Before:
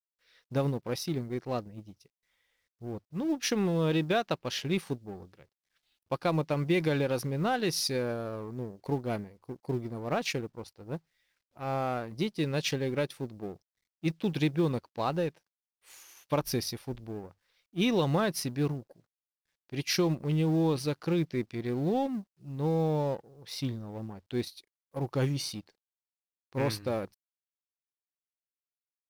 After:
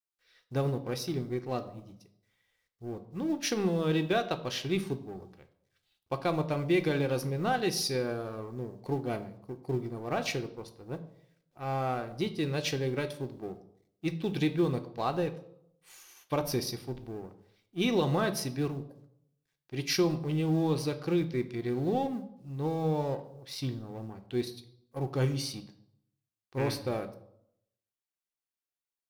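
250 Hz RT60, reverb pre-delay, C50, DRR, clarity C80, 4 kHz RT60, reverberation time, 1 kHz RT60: 0.75 s, 3 ms, 14.0 dB, 7.0 dB, 16.5 dB, 0.55 s, 0.70 s, 0.65 s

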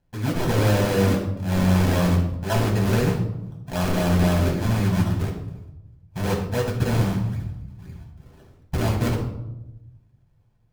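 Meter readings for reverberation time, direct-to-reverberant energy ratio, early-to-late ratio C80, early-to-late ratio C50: 0.95 s, −2.0 dB, 8.5 dB, 5.5 dB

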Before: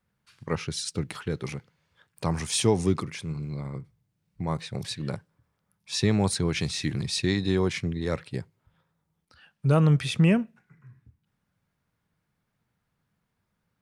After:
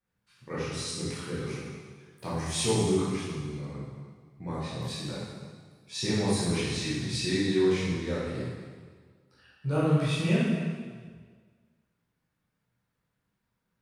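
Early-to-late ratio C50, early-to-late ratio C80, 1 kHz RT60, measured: −2.0 dB, 0.5 dB, 1.6 s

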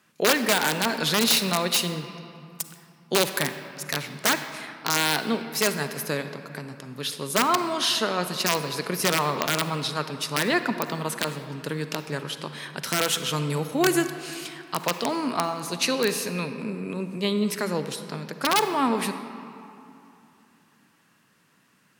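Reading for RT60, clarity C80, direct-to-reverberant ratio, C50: 2.7 s, 10.0 dB, 9.0 dB, 9.0 dB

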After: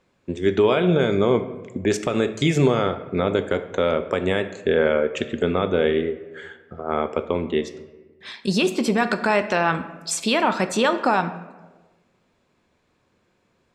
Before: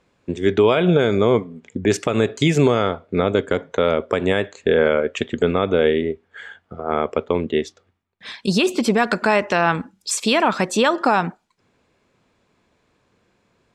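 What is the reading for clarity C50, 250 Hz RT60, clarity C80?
12.5 dB, 1.3 s, 14.5 dB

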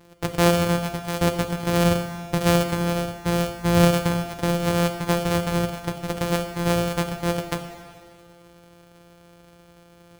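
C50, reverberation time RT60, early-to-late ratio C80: 8.5 dB, 2.0 s, 9.5 dB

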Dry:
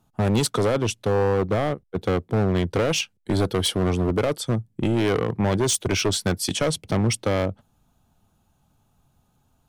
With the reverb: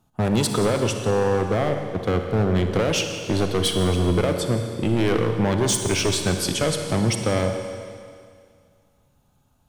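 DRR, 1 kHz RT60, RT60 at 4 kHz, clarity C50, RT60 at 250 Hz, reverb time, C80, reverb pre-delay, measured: 5.0 dB, 2.1 s, 2.1 s, 5.5 dB, 2.1 s, 2.1 s, 6.5 dB, 34 ms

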